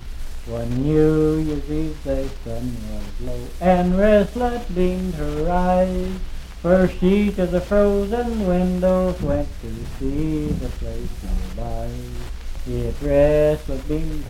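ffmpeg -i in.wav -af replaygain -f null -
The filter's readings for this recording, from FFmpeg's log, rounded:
track_gain = +0.2 dB
track_peak = 0.494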